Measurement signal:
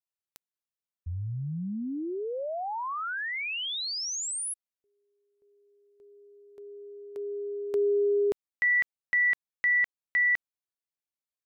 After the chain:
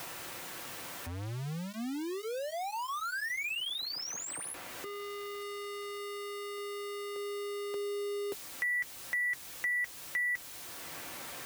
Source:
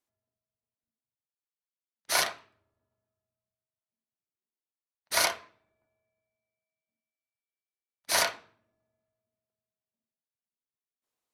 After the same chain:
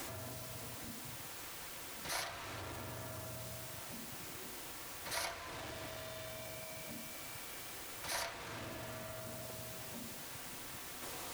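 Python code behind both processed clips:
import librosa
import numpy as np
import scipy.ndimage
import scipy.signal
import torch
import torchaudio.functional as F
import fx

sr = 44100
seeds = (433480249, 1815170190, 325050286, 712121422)

y = x + 0.5 * 10.0 ** (-29.0 / 20.0) * np.sign(x)
y = fx.notch_comb(y, sr, f0_hz=210.0)
y = fx.band_squash(y, sr, depth_pct=70)
y = y * librosa.db_to_amplitude(-7.5)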